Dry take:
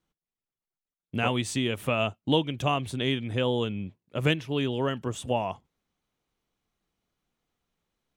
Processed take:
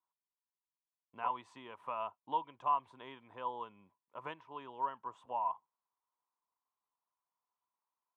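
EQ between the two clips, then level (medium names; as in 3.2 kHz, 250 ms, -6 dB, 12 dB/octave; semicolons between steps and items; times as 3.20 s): band-pass filter 990 Hz, Q 12; +5.5 dB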